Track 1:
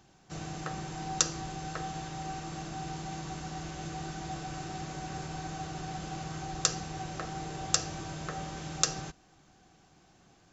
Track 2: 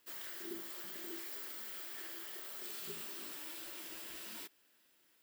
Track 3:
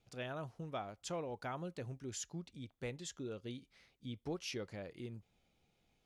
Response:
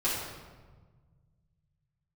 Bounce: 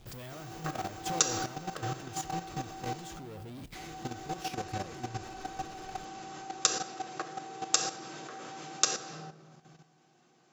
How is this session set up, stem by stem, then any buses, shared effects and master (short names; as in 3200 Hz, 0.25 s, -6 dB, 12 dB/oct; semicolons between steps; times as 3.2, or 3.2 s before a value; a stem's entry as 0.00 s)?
-2.0 dB, 0.00 s, muted 3.13–3.75, send -5.5 dB, HPF 190 Hz 24 dB/oct
+1.5 dB, 0.00 s, no send, auto duck -14 dB, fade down 1.90 s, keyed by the third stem
+2.0 dB, 0.00 s, send -23.5 dB, low shelf 230 Hz +9.5 dB; compressor 16:1, threshold -44 dBFS, peak gain reduction 12.5 dB; power-law curve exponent 0.35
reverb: on, RT60 1.4 s, pre-delay 3 ms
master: level quantiser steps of 11 dB